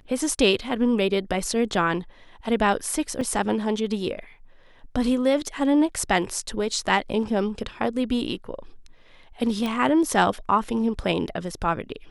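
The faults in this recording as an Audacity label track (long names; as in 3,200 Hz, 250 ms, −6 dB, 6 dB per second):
3.210000	3.210000	drop-out 3.7 ms
9.660000	9.660000	click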